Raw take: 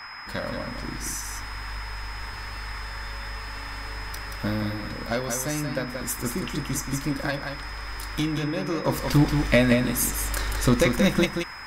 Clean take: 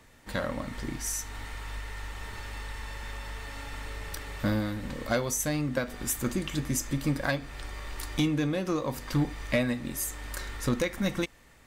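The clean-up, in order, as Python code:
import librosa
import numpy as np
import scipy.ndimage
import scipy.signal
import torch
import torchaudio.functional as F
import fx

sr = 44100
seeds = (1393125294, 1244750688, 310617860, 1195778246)

y = fx.notch(x, sr, hz=5100.0, q=30.0)
y = fx.noise_reduce(y, sr, print_start_s=0.0, print_end_s=0.5, reduce_db=6.0)
y = fx.fix_echo_inverse(y, sr, delay_ms=179, level_db=-6.0)
y = fx.gain(y, sr, db=fx.steps((0.0, 0.0), (8.85, -7.5)))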